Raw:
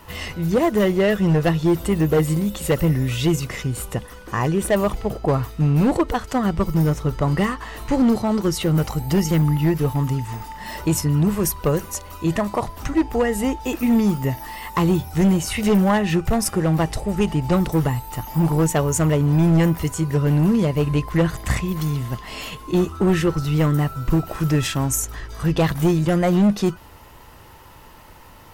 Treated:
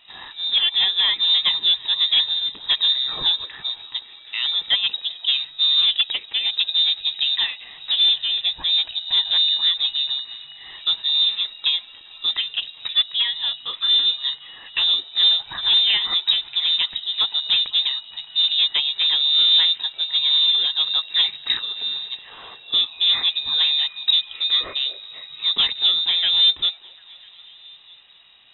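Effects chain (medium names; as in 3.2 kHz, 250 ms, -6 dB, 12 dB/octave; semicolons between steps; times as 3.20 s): frequency inversion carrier 3.8 kHz; repeats whose band climbs or falls 250 ms, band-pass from 500 Hz, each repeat 0.7 oct, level -9.5 dB; upward expansion 1.5:1, over -29 dBFS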